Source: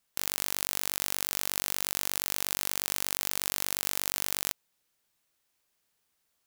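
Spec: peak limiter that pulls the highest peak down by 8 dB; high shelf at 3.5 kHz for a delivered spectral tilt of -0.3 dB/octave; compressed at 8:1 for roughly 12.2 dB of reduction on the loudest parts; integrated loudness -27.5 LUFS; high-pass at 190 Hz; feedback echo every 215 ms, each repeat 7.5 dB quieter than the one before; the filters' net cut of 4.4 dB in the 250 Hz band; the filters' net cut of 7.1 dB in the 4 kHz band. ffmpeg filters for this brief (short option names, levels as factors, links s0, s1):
-af "highpass=190,equalizer=f=250:t=o:g=-4,highshelf=f=3500:g=-8,equalizer=f=4000:t=o:g=-3.5,acompressor=threshold=0.00794:ratio=8,alimiter=level_in=1.19:limit=0.0631:level=0:latency=1,volume=0.841,aecho=1:1:215|430|645|860|1075:0.422|0.177|0.0744|0.0312|0.0131,volume=15.8"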